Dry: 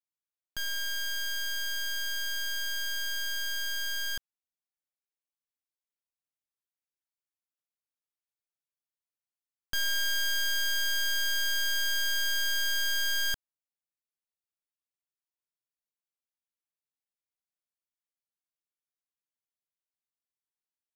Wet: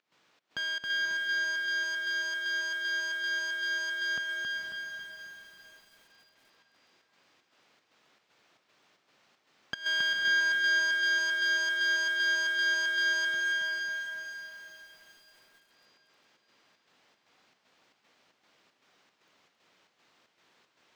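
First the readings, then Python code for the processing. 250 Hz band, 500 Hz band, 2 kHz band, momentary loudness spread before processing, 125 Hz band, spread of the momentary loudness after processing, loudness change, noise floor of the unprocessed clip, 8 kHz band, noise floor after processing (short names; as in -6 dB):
+8.0 dB, +5.5 dB, +6.0 dB, 5 LU, n/a, 15 LU, +1.0 dB, under -85 dBFS, -7.5 dB, -73 dBFS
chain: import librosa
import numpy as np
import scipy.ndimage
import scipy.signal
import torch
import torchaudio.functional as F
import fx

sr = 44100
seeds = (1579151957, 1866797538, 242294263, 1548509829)

p1 = x + 0.5 * 10.0 ** (-53.5 / 20.0) * np.sign(x)
p2 = scipy.signal.sosfilt(scipy.signal.butter(2, 180.0, 'highpass', fs=sr, output='sos'), p1)
p3 = fx.volume_shaper(p2, sr, bpm=154, per_beat=1, depth_db=-19, release_ms=117.0, shape='slow start')
p4 = fx.air_absorb(p3, sr, metres=190.0)
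p5 = p4 + fx.echo_diffused(p4, sr, ms=493, feedback_pct=45, wet_db=-5, dry=0)
p6 = fx.echo_crushed(p5, sr, ms=272, feedback_pct=55, bits=11, wet_db=-4)
y = p6 * 10.0 ** (5.0 / 20.0)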